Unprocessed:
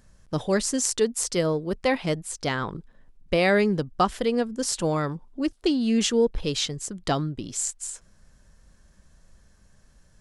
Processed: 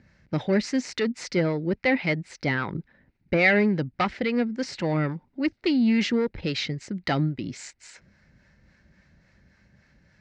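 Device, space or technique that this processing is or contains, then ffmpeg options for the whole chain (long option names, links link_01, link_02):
guitar amplifier with harmonic tremolo: -filter_complex "[0:a]acrossover=split=590[link_01][link_02];[link_01]aeval=exprs='val(0)*(1-0.5/2+0.5/2*cos(2*PI*3.6*n/s))':channel_layout=same[link_03];[link_02]aeval=exprs='val(0)*(1-0.5/2-0.5/2*cos(2*PI*3.6*n/s))':channel_layout=same[link_04];[link_03][link_04]amix=inputs=2:normalize=0,asoftclip=type=tanh:threshold=-19.5dB,highpass=89,equalizer=frequency=450:width_type=q:width=4:gain=-6,equalizer=frequency=690:width_type=q:width=4:gain=-5,equalizer=frequency=1100:width_type=q:width=4:gain=-10,equalizer=frequency=2100:width_type=q:width=4:gain=9,equalizer=frequency=3300:width_type=q:width=4:gain=-9,lowpass=frequency=4300:width=0.5412,lowpass=frequency=4300:width=1.3066,volume=6.5dB"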